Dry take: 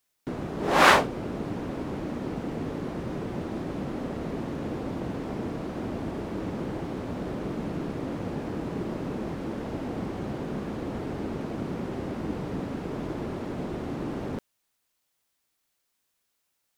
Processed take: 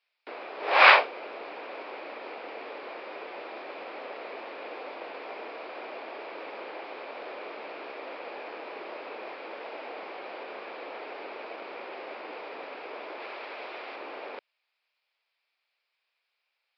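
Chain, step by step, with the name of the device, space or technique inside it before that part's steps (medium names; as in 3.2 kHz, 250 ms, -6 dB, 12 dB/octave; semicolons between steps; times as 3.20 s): 13.20–13.96 s: tilt shelf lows -4 dB, about 820 Hz; musical greeting card (resampled via 11.025 kHz; high-pass 500 Hz 24 dB/octave; peaking EQ 2.4 kHz +10 dB 0.35 oct)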